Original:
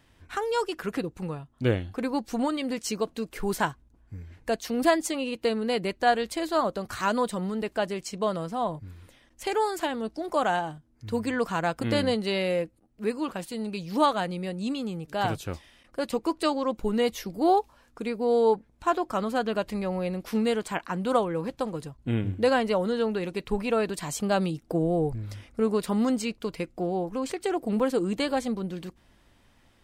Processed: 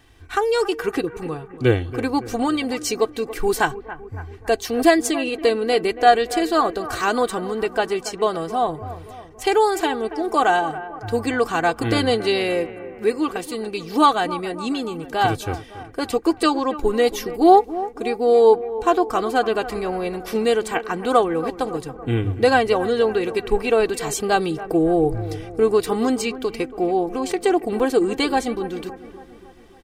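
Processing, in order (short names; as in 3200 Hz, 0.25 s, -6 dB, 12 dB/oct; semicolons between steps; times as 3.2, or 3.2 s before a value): comb 2.6 ms, depth 64%; analogue delay 0.28 s, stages 4096, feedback 56%, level -14.5 dB; gain +6 dB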